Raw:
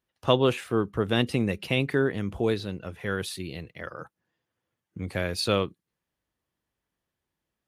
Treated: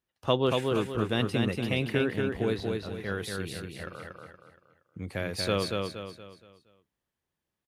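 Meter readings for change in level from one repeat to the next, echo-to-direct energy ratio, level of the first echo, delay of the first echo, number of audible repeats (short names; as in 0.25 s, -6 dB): -8.0 dB, -3.0 dB, -3.5 dB, 0.235 s, 4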